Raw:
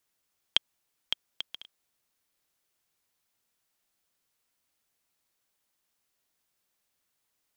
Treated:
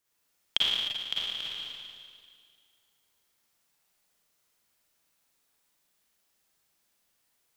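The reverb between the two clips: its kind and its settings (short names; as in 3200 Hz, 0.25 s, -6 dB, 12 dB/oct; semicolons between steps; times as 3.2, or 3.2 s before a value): Schroeder reverb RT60 2 s, DRR -7.5 dB; gain -3 dB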